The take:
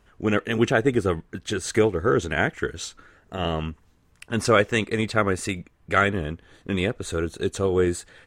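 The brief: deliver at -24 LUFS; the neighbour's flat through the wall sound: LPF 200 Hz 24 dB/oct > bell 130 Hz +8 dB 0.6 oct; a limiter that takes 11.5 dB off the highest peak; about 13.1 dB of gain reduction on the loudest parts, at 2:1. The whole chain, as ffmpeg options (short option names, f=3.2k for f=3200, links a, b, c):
-af "acompressor=threshold=-39dB:ratio=2,alimiter=level_in=5.5dB:limit=-24dB:level=0:latency=1,volume=-5.5dB,lowpass=f=200:w=0.5412,lowpass=f=200:w=1.3066,equalizer=f=130:t=o:w=0.6:g=8,volume=20dB"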